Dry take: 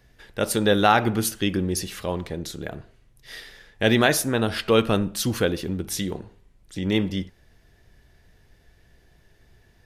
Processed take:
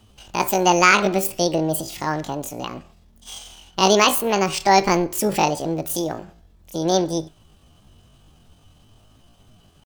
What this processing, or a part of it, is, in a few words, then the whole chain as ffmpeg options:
chipmunk voice: -af "asetrate=76340,aresample=44100,atempo=0.577676,volume=3.5dB"

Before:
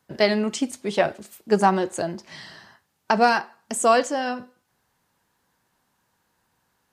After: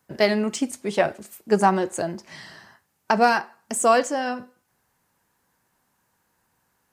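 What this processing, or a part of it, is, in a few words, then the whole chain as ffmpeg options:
exciter from parts: -filter_complex "[0:a]asplit=2[a][b];[b]highpass=f=2.6k:w=0.5412,highpass=f=2.6k:w=1.3066,asoftclip=type=tanh:threshold=-25dB,highpass=f=4.6k:p=1,volume=-5dB[c];[a][c]amix=inputs=2:normalize=0"

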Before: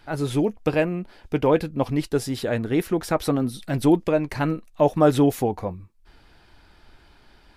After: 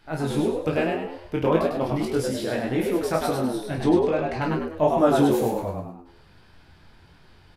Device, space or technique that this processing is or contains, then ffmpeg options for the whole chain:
double-tracked vocal: -filter_complex "[0:a]asettb=1/sr,asplit=3[a][b][c];[a]atrim=end=3.624[d];[b]atrim=start=3.62:end=4.42,asetpts=PTS-STARTPTS,afade=t=in:d=0.004:c=qsin,afade=t=out:st=0.796:d=0.004:c=qsin,lowpass=5.6k[e];[c]atrim=start=4.416[f];[d][e]acrossfade=d=0.004:c1=hsin:c2=qsin[g];[g][f]acrossfade=d=0.004:c1=qsin:c2=hsin,asplit=2[h][i];[i]adelay=31,volume=-6.5dB[j];[h][j]amix=inputs=2:normalize=0,flanger=delay=16:depth=6.1:speed=1.8,asplit=6[k][l][m][n][o][p];[l]adelay=101,afreqshift=83,volume=-4dB[q];[m]adelay=202,afreqshift=166,volume=-12.2dB[r];[n]adelay=303,afreqshift=249,volume=-20.4dB[s];[o]adelay=404,afreqshift=332,volume=-28.5dB[t];[p]adelay=505,afreqshift=415,volume=-36.7dB[u];[k][q][r][s][t][u]amix=inputs=6:normalize=0"

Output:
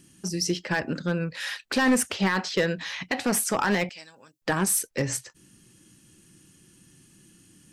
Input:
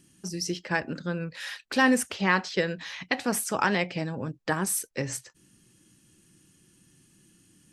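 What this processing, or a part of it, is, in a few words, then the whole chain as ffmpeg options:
limiter into clipper: -filter_complex "[0:a]asettb=1/sr,asplit=3[a][b][c];[a]atrim=end=3.894[d];[b]atrim=start=3.89:end=4.42,asetpts=PTS-STARTPTS,afade=t=in:d=0.004:c=qsin,afade=t=out:st=0.526:d=0.004:c=qsin,aderivative[e];[c]atrim=start=4.416[f];[d][e]acrossfade=d=0.004:c1=hsin:c2=qsin[g];[g][f]acrossfade=d=0.004:c1=qsin:c2=hsin,alimiter=limit=-15dB:level=0:latency=1:release=44,asoftclip=type=hard:threshold=-20.5dB,volume=4.5dB"

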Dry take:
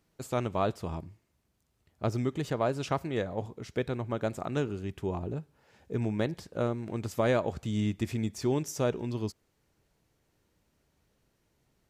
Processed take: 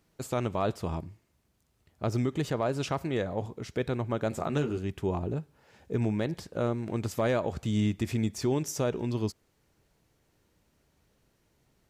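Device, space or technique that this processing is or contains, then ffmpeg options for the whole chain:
clipper into limiter: -filter_complex "[0:a]asettb=1/sr,asplit=3[a][b][c];[a]atrim=end=4.304[d];[b]atrim=start=4.3:end=4.78,asetpts=PTS-STARTPTS,afade=t=in:d=0.004:c=qsin,afade=t=out:st=0.476:d=0.004:c=qsin,asplit=2[e][f];[f]adelay=13,volume=-4.5dB[g];[e][g]amix=inputs=2:normalize=0,atrim=end_sample=21168[h];[c]atrim=start=4.776[i];[d][h]acrossfade=d=0.004:c1=hsin:c2=qsin[j];[j][i]acrossfade=d=0.004:c1=qsin:c2=hsin,asoftclip=type=hard:threshold=-17.5dB,alimiter=limit=-22dB:level=0:latency=1:release=53,volume=3dB"

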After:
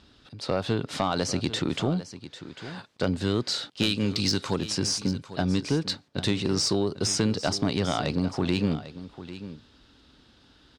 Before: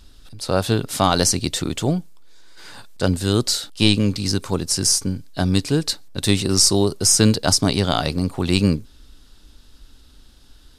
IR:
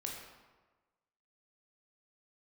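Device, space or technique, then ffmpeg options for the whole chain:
AM radio: -filter_complex "[0:a]asettb=1/sr,asplit=3[a][b][c];[a]atrim=end=3.834[d];[b]atrim=start=3.83:end=4.57,asetpts=PTS-STARTPTS,afade=t=in:d=0.004:c=qsin,afade=t=out:st=0.736:d=0.004:c=qsin,highshelf=f=2.7k:g=11.5[e];[c]atrim=start=4.566[f];[d][e]acrossfade=d=0.004:c1=hsin:c2=qsin[g];[g][f]acrossfade=d=0.004:c1=qsin:c2=hsin,highpass=110,lowpass=3.8k,acompressor=threshold=-20dB:ratio=5,asoftclip=type=tanh:threshold=-13dB,aecho=1:1:797:0.2"

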